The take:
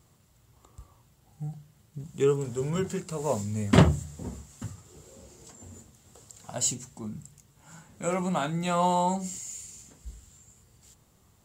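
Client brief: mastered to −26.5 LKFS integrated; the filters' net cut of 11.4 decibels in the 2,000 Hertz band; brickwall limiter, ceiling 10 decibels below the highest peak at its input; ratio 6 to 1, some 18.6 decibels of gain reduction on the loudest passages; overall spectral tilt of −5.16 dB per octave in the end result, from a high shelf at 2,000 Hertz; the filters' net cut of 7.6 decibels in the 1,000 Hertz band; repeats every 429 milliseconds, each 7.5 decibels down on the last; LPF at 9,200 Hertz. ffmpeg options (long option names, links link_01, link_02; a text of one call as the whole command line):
ffmpeg -i in.wav -af "lowpass=9200,equalizer=frequency=1000:width_type=o:gain=-6.5,highshelf=frequency=2000:gain=-8.5,equalizer=frequency=2000:width_type=o:gain=-7.5,acompressor=threshold=-33dB:ratio=6,alimiter=level_in=7.5dB:limit=-24dB:level=0:latency=1,volume=-7.5dB,aecho=1:1:429|858|1287|1716|2145:0.422|0.177|0.0744|0.0312|0.0131,volume=15.5dB" out.wav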